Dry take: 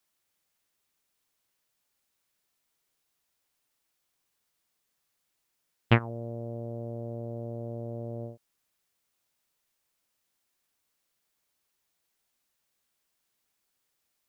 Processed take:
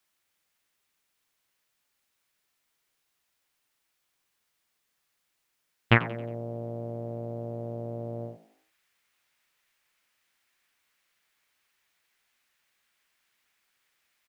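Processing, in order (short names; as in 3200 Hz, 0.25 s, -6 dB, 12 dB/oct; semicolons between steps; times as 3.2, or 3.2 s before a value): bell 2000 Hz +5 dB 1.9 oct, from 5.96 s +12.5 dB; frequency-shifting echo 90 ms, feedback 44%, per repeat +51 Hz, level -18 dB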